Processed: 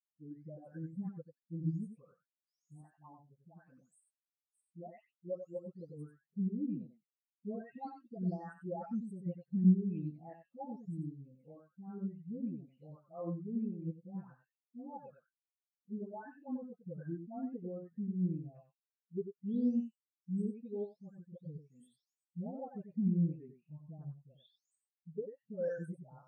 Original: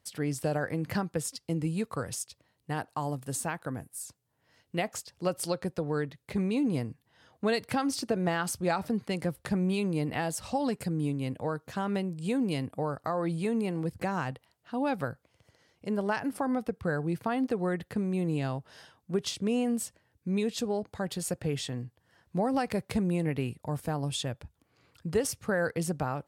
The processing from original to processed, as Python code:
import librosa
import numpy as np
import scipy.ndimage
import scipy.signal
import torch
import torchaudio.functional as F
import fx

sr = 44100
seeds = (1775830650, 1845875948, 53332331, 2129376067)

p1 = fx.spec_delay(x, sr, highs='late', ms=588)
p2 = scipy.signal.sosfilt(scipy.signal.butter(4, 140.0, 'highpass', fs=sr, output='sos'), p1)
p3 = p2 + fx.echo_single(p2, sr, ms=93, db=-3.5, dry=0)
p4 = fx.spectral_expand(p3, sr, expansion=2.5)
y = p4 * 10.0 ** (-1.5 / 20.0)